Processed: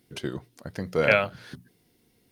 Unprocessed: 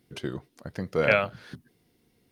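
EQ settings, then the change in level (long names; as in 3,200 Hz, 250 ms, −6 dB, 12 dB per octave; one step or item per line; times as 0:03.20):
high-shelf EQ 4,600 Hz +4.5 dB
mains-hum notches 60/120/180 Hz
notch filter 1,200 Hz, Q 28
+1.0 dB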